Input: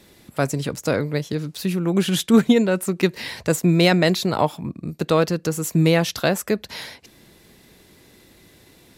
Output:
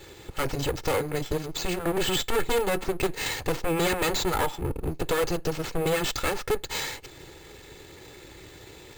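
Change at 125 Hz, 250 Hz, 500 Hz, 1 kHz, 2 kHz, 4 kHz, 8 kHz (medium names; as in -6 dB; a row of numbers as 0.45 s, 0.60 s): -11.0 dB, -12.5 dB, -5.5 dB, -2.5 dB, -4.0 dB, -3.5 dB, -3.0 dB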